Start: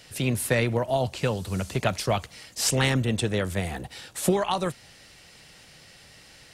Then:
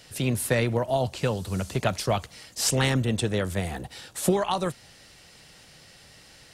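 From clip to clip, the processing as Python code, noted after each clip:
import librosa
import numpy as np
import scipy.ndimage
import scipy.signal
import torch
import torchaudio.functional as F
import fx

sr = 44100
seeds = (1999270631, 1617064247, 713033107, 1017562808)

y = fx.peak_eq(x, sr, hz=2300.0, db=-2.5, octaves=0.77)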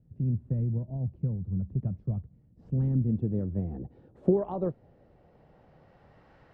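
y = fx.filter_sweep_lowpass(x, sr, from_hz=170.0, to_hz=1100.0, start_s=2.45, end_s=6.34, q=1.2)
y = y * librosa.db_to_amplitude(-2.0)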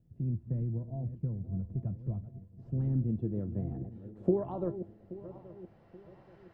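y = fx.reverse_delay_fb(x, sr, ms=414, feedback_pct=61, wet_db=-13)
y = fx.comb_fb(y, sr, f0_hz=340.0, decay_s=0.19, harmonics='all', damping=0.0, mix_pct=70)
y = y * librosa.db_to_amplitude(4.5)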